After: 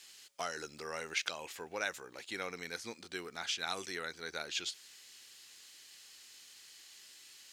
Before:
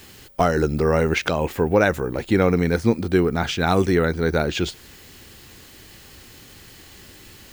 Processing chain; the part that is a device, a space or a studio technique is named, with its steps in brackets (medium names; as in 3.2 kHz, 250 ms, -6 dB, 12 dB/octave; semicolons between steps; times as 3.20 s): piezo pickup straight into a mixer (low-pass 6.6 kHz 12 dB/octave; differentiator); trim -1.5 dB